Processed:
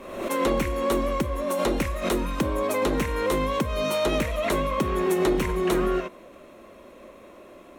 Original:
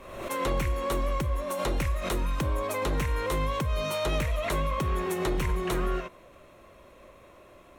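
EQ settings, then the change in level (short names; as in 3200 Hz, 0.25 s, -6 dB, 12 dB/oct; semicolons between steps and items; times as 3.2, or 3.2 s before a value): EQ curve 140 Hz 0 dB, 220 Hz +13 dB, 1000 Hz +6 dB; -2.5 dB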